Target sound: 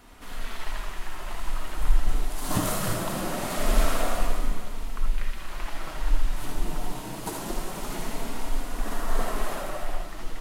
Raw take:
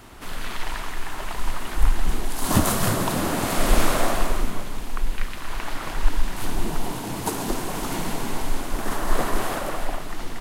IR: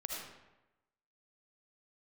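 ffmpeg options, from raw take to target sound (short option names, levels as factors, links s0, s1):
-filter_complex "[0:a]flanger=delay=4.1:depth=2.7:regen=-45:speed=0.23:shape=sinusoidal[s0];[1:a]atrim=start_sample=2205,atrim=end_sample=3969[s1];[s0][s1]afir=irnorm=-1:irlink=0"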